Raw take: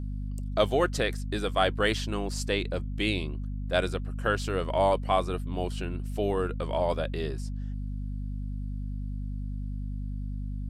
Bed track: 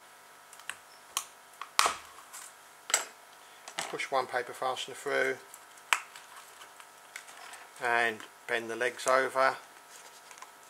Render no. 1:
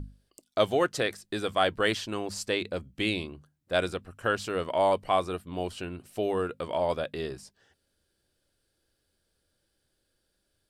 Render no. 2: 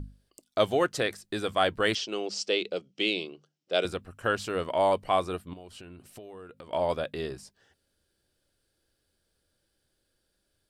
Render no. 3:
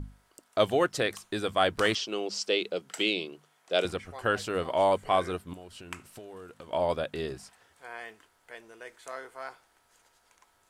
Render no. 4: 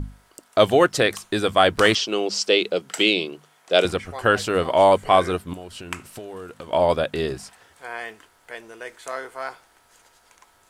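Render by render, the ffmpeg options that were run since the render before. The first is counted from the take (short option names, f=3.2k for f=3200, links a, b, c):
-af "bandreject=f=50:t=h:w=6,bandreject=f=100:t=h:w=6,bandreject=f=150:t=h:w=6,bandreject=f=200:t=h:w=6,bandreject=f=250:t=h:w=6"
-filter_complex "[0:a]asettb=1/sr,asplit=3[a][b][c];[a]atrim=end=1.954[d];[b]atrim=start=1.95:end=3.85,asetpts=PTS-STARTPTS,afade=t=in:d=0.004:c=qsin,afade=t=out:st=1.896:d=0.004:c=qsin,highpass=f=190:w=0.5412,highpass=f=190:w=1.3066,equalizer=f=240:t=q:w=4:g=-10,equalizer=f=430:t=q:w=4:g=5,equalizer=f=1k:t=q:w=4:g=-8,equalizer=f=1.7k:t=q:w=4:g=-8,equalizer=f=3k:t=q:w=4:g=6,equalizer=f=5.4k:t=q:w=4:g=8,lowpass=f=7.1k:w=0.5412,lowpass=f=7.1k:w=1.3066[e];[c]atrim=start=3.846[f];[d][e]acrossfade=d=0.004:c1=hsin:c2=qsin[g];[g][f]acrossfade=d=0.004:c1=qsin:c2=hsin,asettb=1/sr,asplit=3[h][i][j];[h]atrim=end=5.534[k];[i]atrim=start=5.53:end=6.73,asetpts=PTS-STARTPTS,afade=t=in:d=0.004:c=qsin,afade=t=out:st=1.196:d=0.004:c=qsin,acompressor=threshold=-43dB:ratio=6:attack=3.2:release=140:knee=1:detection=peak[l];[j]atrim=start=6.726[m];[k][l]acrossfade=d=0.004:c1=hsin:c2=qsin[n];[n][m]acrossfade=d=0.004:c1=qsin:c2=hsin"
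-filter_complex "[1:a]volume=-14.5dB[a];[0:a][a]amix=inputs=2:normalize=0"
-af "volume=9dB,alimiter=limit=-2dB:level=0:latency=1"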